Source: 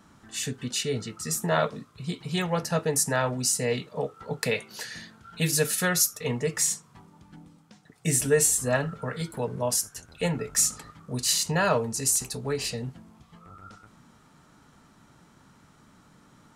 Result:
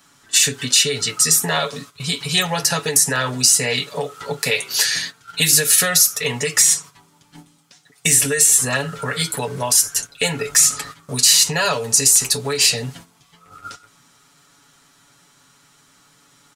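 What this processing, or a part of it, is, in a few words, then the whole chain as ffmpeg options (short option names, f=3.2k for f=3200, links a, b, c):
mastering chain: -filter_complex "[0:a]agate=range=-11dB:threshold=-46dB:ratio=16:detection=peak,equalizer=f=450:t=o:w=1.2:g=3.5,aecho=1:1:7.1:0.72,acrossover=split=1100|3000[a][b][c];[a]acompressor=threshold=-22dB:ratio=4[d];[b]acompressor=threshold=-35dB:ratio=4[e];[c]acompressor=threshold=-32dB:ratio=4[f];[d][e][f]amix=inputs=3:normalize=0,acompressor=threshold=-27dB:ratio=2,asoftclip=type=tanh:threshold=-12.5dB,tiltshelf=f=1.4k:g=-9.5,alimiter=level_in=13.5dB:limit=-1dB:release=50:level=0:latency=1,volume=-1dB"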